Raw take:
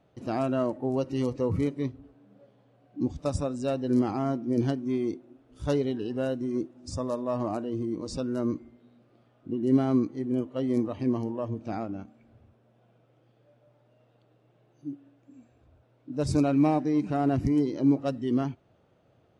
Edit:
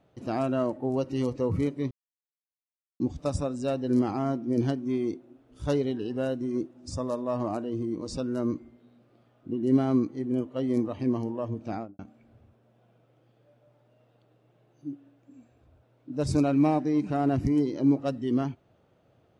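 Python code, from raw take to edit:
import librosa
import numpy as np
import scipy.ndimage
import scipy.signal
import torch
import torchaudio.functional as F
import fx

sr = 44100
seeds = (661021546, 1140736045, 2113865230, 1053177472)

y = fx.studio_fade_out(x, sr, start_s=11.72, length_s=0.27)
y = fx.edit(y, sr, fx.silence(start_s=1.91, length_s=1.09), tone=tone)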